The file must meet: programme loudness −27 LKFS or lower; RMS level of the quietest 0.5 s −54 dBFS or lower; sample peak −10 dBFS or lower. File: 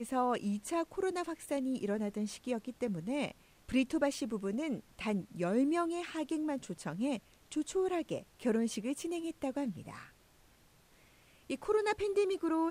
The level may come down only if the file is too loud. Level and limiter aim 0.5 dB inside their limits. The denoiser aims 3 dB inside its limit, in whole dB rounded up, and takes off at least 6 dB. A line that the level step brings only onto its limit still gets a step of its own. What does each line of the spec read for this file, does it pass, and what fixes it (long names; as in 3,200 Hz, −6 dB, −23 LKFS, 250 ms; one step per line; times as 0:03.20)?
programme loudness −35.5 LKFS: in spec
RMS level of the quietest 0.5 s −65 dBFS: in spec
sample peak −18.0 dBFS: in spec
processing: no processing needed